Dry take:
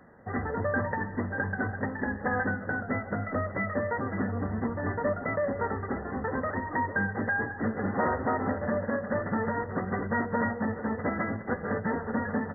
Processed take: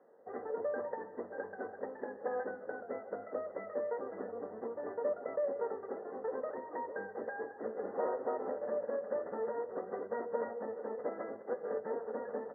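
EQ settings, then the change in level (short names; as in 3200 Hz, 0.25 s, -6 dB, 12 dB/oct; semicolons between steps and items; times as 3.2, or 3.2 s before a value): ladder band-pass 540 Hz, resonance 50%; +3.0 dB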